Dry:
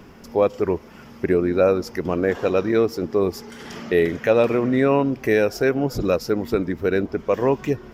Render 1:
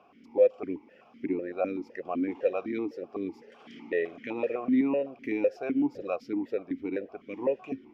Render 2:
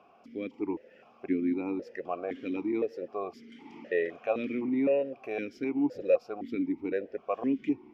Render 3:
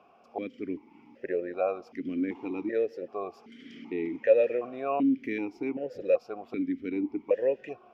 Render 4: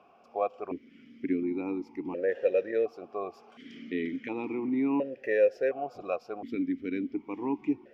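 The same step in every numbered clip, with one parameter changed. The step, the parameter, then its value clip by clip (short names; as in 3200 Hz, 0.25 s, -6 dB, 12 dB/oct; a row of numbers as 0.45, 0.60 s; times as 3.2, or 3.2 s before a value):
vowel sequencer, rate: 7.9, 3.9, 2.6, 1.4 Hz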